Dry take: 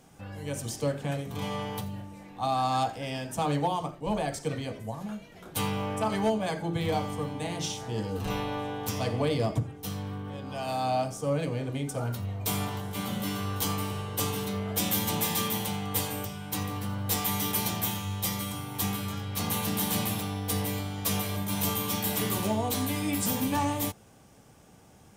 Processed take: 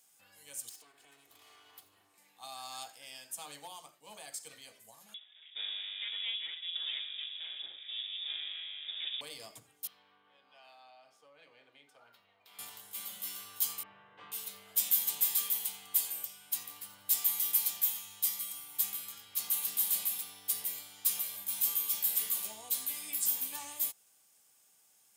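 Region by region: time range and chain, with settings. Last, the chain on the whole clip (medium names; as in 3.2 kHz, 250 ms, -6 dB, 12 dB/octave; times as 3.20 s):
0.69–2.18 s: comb filter that takes the minimum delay 2.7 ms + treble shelf 4.7 kHz -10 dB + compression 5:1, threshold -38 dBFS
5.14–9.21 s: comb filter that takes the minimum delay 0.61 ms + frequency inversion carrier 3.6 kHz
9.87–12.59 s: high-pass 560 Hz 6 dB/octave + compression, threshold -33 dBFS + distance through air 350 m
13.83–14.32 s: low-pass 2.1 kHz 24 dB/octave + doubling 26 ms -4 dB
whole clip: differentiator; band-stop 5.8 kHz, Q 14; trim -1.5 dB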